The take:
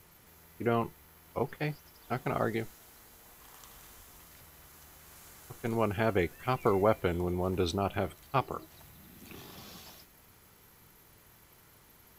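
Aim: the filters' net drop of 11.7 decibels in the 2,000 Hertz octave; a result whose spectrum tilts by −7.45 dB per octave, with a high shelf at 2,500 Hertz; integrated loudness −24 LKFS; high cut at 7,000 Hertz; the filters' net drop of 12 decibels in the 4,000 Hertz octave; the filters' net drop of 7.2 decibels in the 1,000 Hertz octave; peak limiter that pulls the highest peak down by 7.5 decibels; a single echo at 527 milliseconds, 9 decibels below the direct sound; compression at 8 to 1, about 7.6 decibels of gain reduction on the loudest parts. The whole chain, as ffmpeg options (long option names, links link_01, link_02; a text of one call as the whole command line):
ffmpeg -i in.wav -af "lowpass=7000,equalizer=frequency=1000:width_type=o:gain=-6.5,equalizer=frequency=2000:width_type=o:gain=-8.5,highshelf=frequency=2500:gain=-7.5,equalizer=frequency=4000:width_type=o:gain=-5,acompressor=threshold=-32dB:ratio=8,alimiter=level_in=6dB:limit=-24dB:level=0:latency=1,volume=-6dB,aecho=1:1:527:0.355,volume=18.5dB" out.wav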